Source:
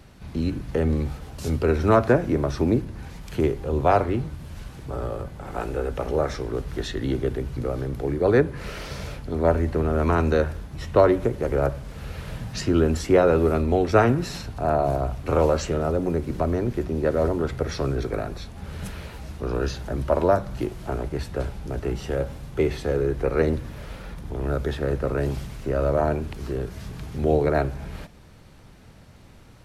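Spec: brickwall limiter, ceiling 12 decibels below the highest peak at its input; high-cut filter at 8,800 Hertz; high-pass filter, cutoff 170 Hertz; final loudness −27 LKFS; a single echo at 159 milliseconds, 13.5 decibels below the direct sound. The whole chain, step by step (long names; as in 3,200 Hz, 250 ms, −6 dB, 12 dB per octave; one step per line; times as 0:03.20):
high-pass filter 170 Hz
low-pass filter 8,800 Hz
brickwall limiter −15.5 dBFS
single-tap delay 159 ms −13.5 dB
level +1.5 dB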